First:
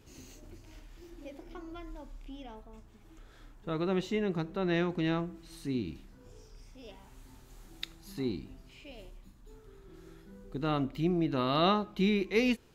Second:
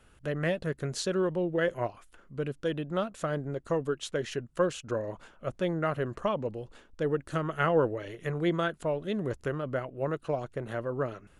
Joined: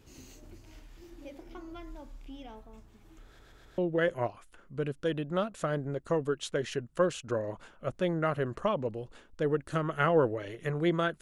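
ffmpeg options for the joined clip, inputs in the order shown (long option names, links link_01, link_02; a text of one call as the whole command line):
ffmpeg -i cue0.wav -i cue1.wav -filter_complex "[0:a]apad=whole_dur=11.21,atrim=end=11.21,asplit=4[link_01][link_02][link_03][link_04];[link_01]atrim=end=3.392[link_05];[link_02]atrim=start=3.258:end=3.392[link_06];[link_03]atrim=start=3.258:end=3.392[link_07];[link_04]atrim=start=3.258:end=3.392[link_08];[1:a]atrim=start=1.378:end=8.81[link_09];[link_05][link_06]acrossfade=duration=0.004:curve1=hsin:curve2=hsin[link_10];[link_10][link_07]acrossfade=duration=0.004:curve1=hsin:curve2=hsin[link_11];[link_11][link_08]acrossfade=duration=0.004:curve1=hsin:curve2=hsin[link_12];[link_12][link_09]acrossfade=duration=0.004:curve1=hsin:curve2=hsin" out.wav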